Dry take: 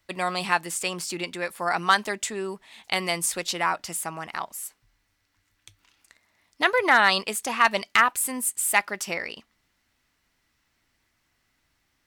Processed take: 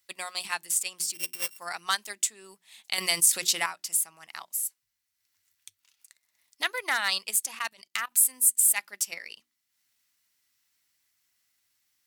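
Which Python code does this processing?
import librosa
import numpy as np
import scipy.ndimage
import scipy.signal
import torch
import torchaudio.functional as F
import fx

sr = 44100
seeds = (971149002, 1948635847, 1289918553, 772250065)

y = fx.sample_sort(x, sr, block=16, at=(1.13, 1.57), fade=0.02)
y = scipy.signal.sosfilt(scipy.signal.butter(2, 66.0, 'highpass', fs=sr, output='sos'), y)
y = scipy.signal.lfilter([1.0, -0.9], [1.0], y)
y = fx.hum_notches(y, sr, base_hz=60, count=6)
y = fx.level_steps(y, sr, step_db=17, at=(7.59, 8.12))
y = fx.transient(y, sr, attack_db=2, sustain_db=-7)
y = fx.env_flatten(y, sr, amount_pct=50, at=(2.98, 3.66))
y = F.gain(torch.from_numpy(y), 3.0).numpy()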